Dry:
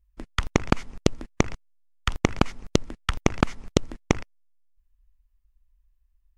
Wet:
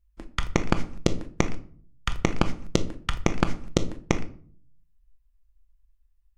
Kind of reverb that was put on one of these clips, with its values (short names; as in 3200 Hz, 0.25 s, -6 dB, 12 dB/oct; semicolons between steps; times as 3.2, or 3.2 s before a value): shoebox room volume 490 m³, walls furnished, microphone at 0.81 m; gain -2.5 dB